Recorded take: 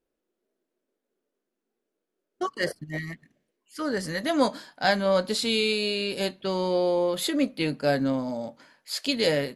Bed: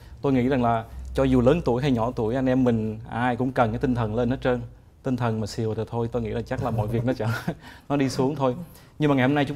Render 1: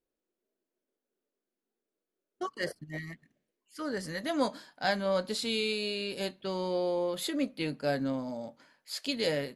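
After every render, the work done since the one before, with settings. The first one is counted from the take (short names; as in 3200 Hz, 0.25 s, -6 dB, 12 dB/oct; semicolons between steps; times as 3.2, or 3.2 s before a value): gain -6.5 dB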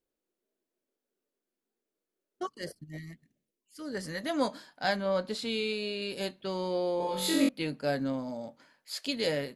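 2.47–3.95 bell 1200 Hz -11 dB 2.6 oct; 4.96–6.02 high shelf 5400 Hz -9 dB; 6.98–7.49 flutter echo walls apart 3.7 m, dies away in 0.94 s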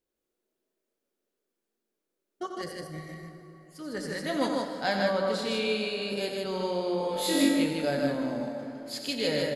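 loudspeakers at several distances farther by 31 m -8 dB, 53 m -3 dB; plate-style reverb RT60 3.8 s, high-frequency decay 0.55×, DRR 6 dB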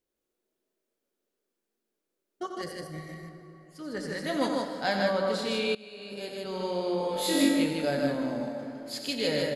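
3.29–4.22 high shelf 7900 Hz -6.5 dB; 5.75–6.86 fade in, from -21 dB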